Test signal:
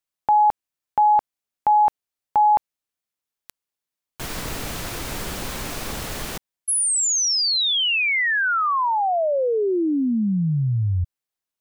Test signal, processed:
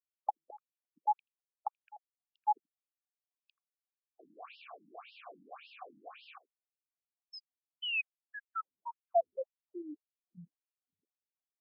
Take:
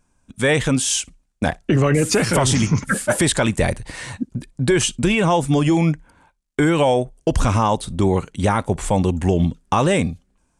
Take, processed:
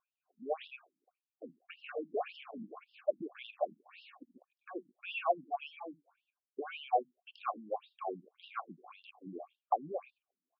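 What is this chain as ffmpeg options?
-filter_complex "[0:a]asplit=3[a][b][c];[a]bandpass=f=730:t=q:w=8,volume=0dB[d];[b]bandpass=f=1.09k:t=q:w=8,volume=-6dB[e];[c]bandpass=f=2.44k:t=q:w=8,volume=-9dB[f];[d][e][f]amix=inputs=3:normalize=0,asplit=2[g][h];[h]aecho=0:1:82:0.0794[i];[g][i]amix=inputs=2:normalize=0,afftfilt=real='re*between(b*sr/1024,220*pow(3900/220,0.5+0.5*sin(2*PI*1.8*pts/sr))/1.41,220*pow(3900/220,0.5+0.5*sin(2*PI*1.8*pts/sr))*1.41)':imag='im*between(b*sr/1024,220*pow(3900/220,0.5+0.5*sin(2*PI*1.8*pts/sr))/1.41,220*pow(3900/220,0.5+0.5*sin(2*PI*1.8*pts/sr))*1.41)':win_size=1024:overlap=0.75"

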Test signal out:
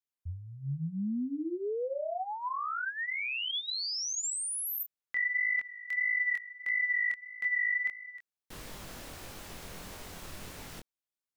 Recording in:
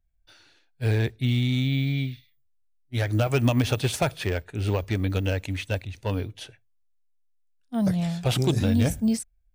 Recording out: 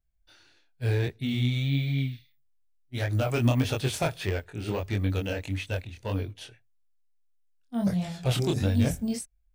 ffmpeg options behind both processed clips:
-af "flanger=delay=20:depth=5.6:speed=1.6"

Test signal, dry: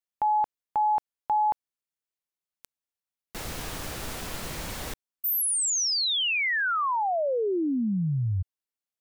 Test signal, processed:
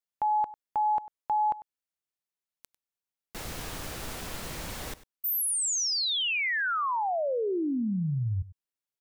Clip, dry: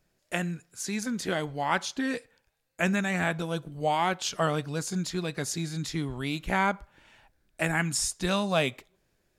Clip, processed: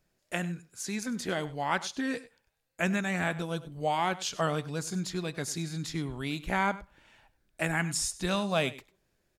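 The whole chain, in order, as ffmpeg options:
-af "aecho=1:1:98:0.133,volume=-2.5dB"

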